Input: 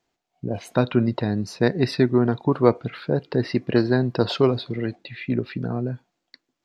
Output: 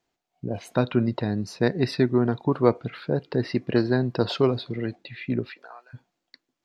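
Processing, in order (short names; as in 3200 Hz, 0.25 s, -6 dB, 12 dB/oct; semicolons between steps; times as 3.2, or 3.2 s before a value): 5.49–5.93 HPF 550 Hz -> 1200 Hz 24 dB/oct; gain -2.5 dB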